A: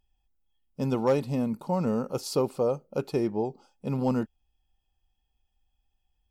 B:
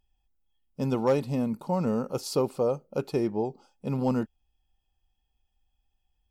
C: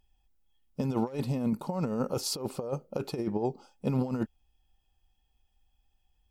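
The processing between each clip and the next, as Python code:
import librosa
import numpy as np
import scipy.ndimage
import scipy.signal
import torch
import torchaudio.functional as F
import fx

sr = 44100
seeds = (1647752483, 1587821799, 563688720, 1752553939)

y1 = x
y2 = fx.over_compress(y1, sr, threshold_db=-29.0, ratio=-0.5)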